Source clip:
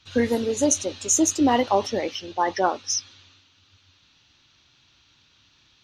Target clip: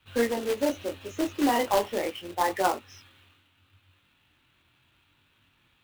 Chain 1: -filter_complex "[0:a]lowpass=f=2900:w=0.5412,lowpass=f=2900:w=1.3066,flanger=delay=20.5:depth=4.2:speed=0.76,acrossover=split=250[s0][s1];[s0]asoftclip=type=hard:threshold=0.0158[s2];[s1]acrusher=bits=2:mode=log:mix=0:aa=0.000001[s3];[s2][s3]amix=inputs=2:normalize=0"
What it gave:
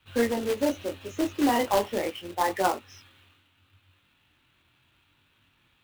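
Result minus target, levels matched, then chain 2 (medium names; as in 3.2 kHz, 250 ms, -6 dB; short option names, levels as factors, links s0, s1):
hard clipper: distortion -5 dB
-filter_complex "[0:a]lowpass=f=2900:w=0.5412,lowpass=f=2900:w=1.3066,flanger=delay=20.5:depth=4.2:speed=0.76,acrossover=split=250[s0][s1];[s0]asoftclip=type=hard:threshold=0.00473[s2];[s1]acrusher=bits=2:mode=log:mix=0:aa=0.000001[s3];[s2][s3]amix=inputs=2:normalize=0"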